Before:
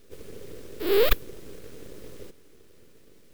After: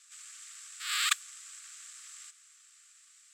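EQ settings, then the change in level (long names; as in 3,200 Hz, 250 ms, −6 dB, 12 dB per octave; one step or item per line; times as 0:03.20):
linear-phase brick-wall high-pass 1,100 Hz
low-pass with resonance 7,700 Hz, resonance Q 7.4
0.0 dB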